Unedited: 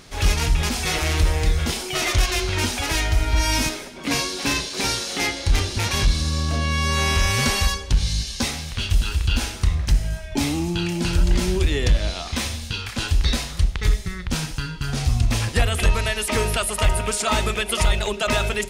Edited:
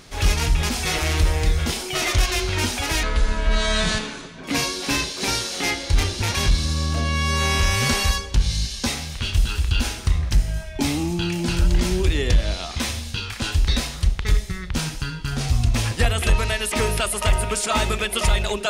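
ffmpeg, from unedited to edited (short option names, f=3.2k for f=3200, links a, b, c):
-filter_complex "[0:a]asplit=3[a][b][c];[a]atrim=end=3.034[d];[b]atrim=start=3.03:end=4,asetpts=PTS-STARTPTS,asetrate=30429,aresample=44100[e];[c]atrim=start=3.996[f];[d][e]acrossfade=d=0.004:c1=hsin:c2=hsin[g];[g][f]acrossfade=d=0.004:c1=hsin:c2=hsin"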